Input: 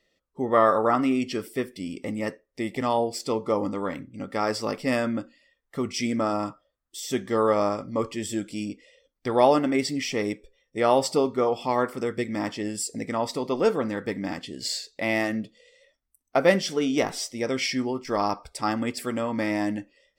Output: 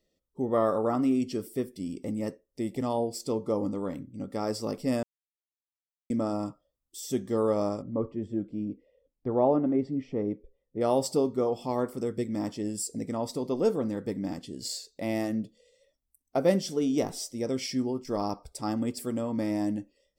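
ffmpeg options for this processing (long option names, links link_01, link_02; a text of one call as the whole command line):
ffmpeg -i in.wav -filter_complex "[0:a]asplit=3[link_01][link_02][link_03];[link_01]afade=type=out:start_time=7.81:duration=0.02[link_04];[link_02]lowpass=1300,afade=type=in:start_time=7.81:duration=0.02,afade=type=out:start_time=10.8:duration=0.02[link_05];[link_03]afade=type=in:start_time=10.8:duration=0.02[link_06];[link_04][link_05][link_06]amix=inputs=3:normalize=0,asplit=3[link_07][link_08][link_09];[link_07]atrim=end=5.03,asetpts=PTS-STARTPTS,afade=type=out:start_time=5.026:duration=0.004:curve=hsin[link_10];[link_08]atrim=start=5.03:end=6.1,asetpts=PTS-STARTPTS,volume=0[link_11];[link_09]atrim=start=6.1,asetpts=PTS-STARTPTS,afade=type=in:duration=0.004:curve=hsin[link_12];[link_10][link_11][link_12]concat=n=3:v=0:a=1,equalizer=frequency=1900:width_type=o:width=2.4:gain=-15" out.wav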